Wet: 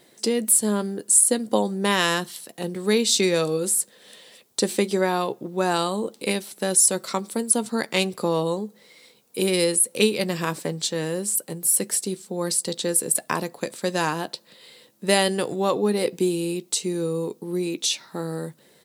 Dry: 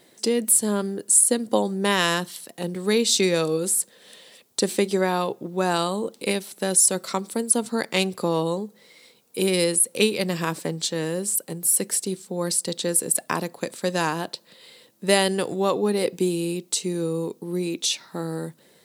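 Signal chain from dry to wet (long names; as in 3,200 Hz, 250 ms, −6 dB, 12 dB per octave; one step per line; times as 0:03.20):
double-tracking delay 14 ms −14 dB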